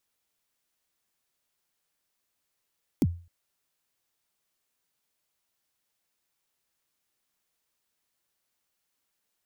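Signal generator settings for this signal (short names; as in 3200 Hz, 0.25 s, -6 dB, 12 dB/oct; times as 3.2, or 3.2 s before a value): kick drum length 0.26 s, from 340 Hz, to 86 Hz, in 42 ms, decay 0.37 s, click on, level -16 dB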